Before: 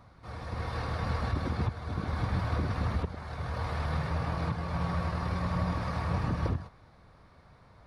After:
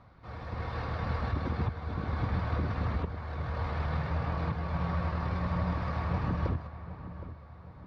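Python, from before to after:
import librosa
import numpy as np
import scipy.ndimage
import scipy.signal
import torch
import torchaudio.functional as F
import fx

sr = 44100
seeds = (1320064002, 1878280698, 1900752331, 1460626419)

p1 = scipy.signal.sosfilt(scipy.signal.butter(2, 3800.0, 'lowpass', fs=sr, output='sos'), x)
p2 = p1 + fx.echo_filtered(p1, sr, ms=767, feedback_pct=45, hz=1900.0, wet_db=-12.5, dry=0)
y = p2 * librosa.db_to_amplitude(-1.0)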